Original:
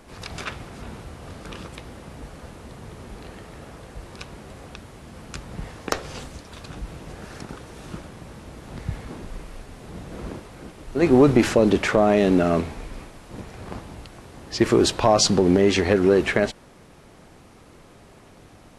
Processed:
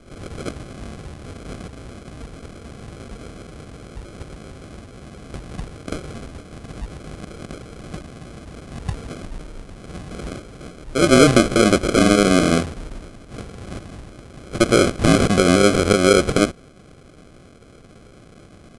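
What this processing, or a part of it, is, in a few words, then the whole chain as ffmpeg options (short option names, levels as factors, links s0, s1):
crushed at another speed: -af "asetrate=88200,aresample=44100,acrusher=samples=24:mix=1:aa=0.000001,asetrate=22050,aresample=44100,volume=1.41"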